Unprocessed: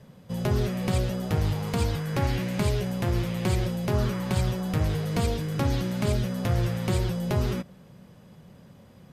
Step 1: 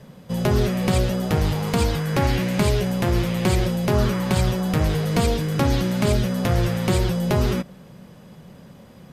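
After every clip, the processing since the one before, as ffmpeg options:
-af "equalizer=f=99:t=o:w=0.54:g=-7,volume=7dB"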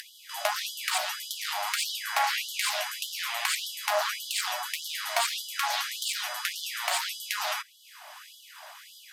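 -af "acompressor=mode=upward:threshold=-28dB:ratio=2.5,asoftclip=type=hard:threshold=-15dB,afftfilt=real='re*gte(b*sr/1024,580*pow(3000/580,0.5+0.5*sin(2*PI*1.7*pts/sr)))':imag='im*gte(b*sr/1024,580*pow(3000/580,0.5+0.5*sin(2*PI*1.7*pts/sr)))':win_size=1024:overlap=0.75,volume=3dB"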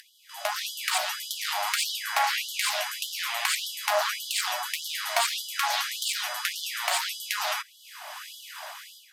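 -af "dynaudnorm=f=180:g=5:m=16dB,volume=-9dB"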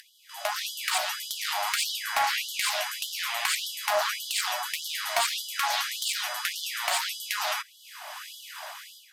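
-af "asoftclip=type=tanh:threshold=-12dB"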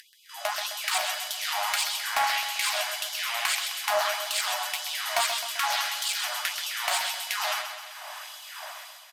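-af "aecho=1:1:130|260|390|520|650|780|910:0.398|0.227|0.129|0.0737|0.042|0.024|0.0137"

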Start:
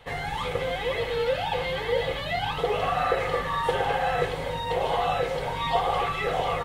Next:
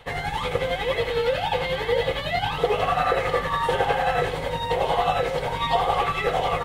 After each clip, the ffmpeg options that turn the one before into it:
-af "tremolo=f=11:d=0.45,volume=5dB"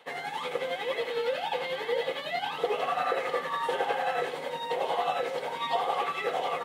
-af "highpass=f=220:w=0.5412,highpass=f=220:w=1.3066,volume=-6.5dB"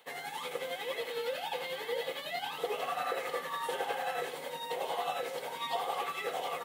-af "aemphasis=mode=production:type=50fm,volume=-6dB"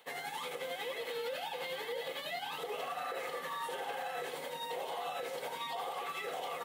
-af "alimiter=level_in=6.5dB:limit=-24dB:level=0:latency=1:release=60,volume=-6.5dB"

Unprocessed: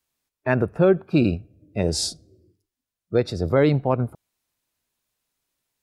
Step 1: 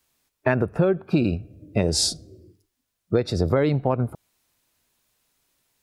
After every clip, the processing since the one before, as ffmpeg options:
-af "acompressor=threshold=-26dB:ratio=6,volume=8.5dB"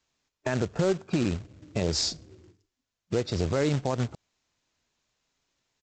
-af "alimiter=limit=-12dB:level=0:latency=1:release=14,aresample=16000,acrusher=bits=3:mode=log:mix=0:aa=0.000001,aresample=44100,volume=-4.5dB"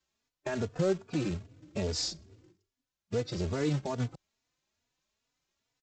-filter_complex "[0:a]asplit=2[a][b];[b]adelay=3.4,afreqshift=2.4[c];[a][c]amix=inputs=2:normalize=1,volume=-2.5dB"

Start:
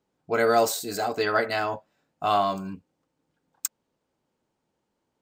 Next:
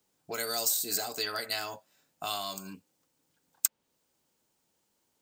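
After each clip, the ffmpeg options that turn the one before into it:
-filter_complex "[0:a]acrossover=split=180|3700[a][b][c];[a]acompressor=threshold=-55dB:ratio=4[d];[b]acompressor=threshold=-35dB:ratio=4[e];[c]acompressor=threshold=-40dB:ratio=4[f];[d][e][f]amix=inputs=3:normalize=0,crystalizer=i=5.5:c=0,volume=-4dB"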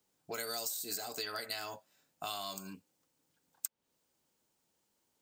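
-af "acompressor=threshold=-32dB:ratio=6,volume=-3dB"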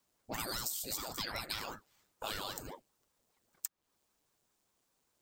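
-af "aeval=exprs='val(0)*sin(2*PI*410*n/s+410*0.85/5.1*sin(2*PI*5.1*n/s))':c=same,volume=3dB"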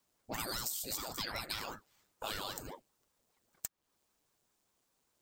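-af "aeval=exprs='clip(val(0),-1,0.0398)':c=same"

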